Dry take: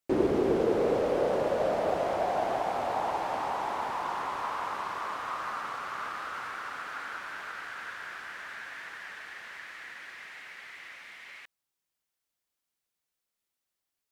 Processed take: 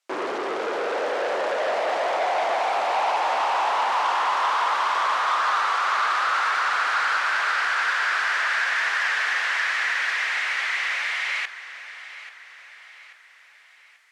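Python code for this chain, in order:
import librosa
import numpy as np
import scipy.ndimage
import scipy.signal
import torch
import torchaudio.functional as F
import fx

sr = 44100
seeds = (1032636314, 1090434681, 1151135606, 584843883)

p1 = fx.rider(x, sr, range_db=10, speed_s=0.5)
p2 = x + F.gain(torch.from_numpy(p1), 3.0).numpy()
p3 = 10.0 ** (-23.5 / 20.0) * np.tanh(p2 / 10.0 ** (-23.5 / 20.0))
p4 = fx.bandpass_edges(p3, sr, low_hz=720.0, high_hz=7400.0)
p5 = fx.echo_feedback(p4, sr, ms=836, feedback_pct=47, wet_db=-14.5)
y = F.gain(torch.from_numpy(p5), 7.0).numpy()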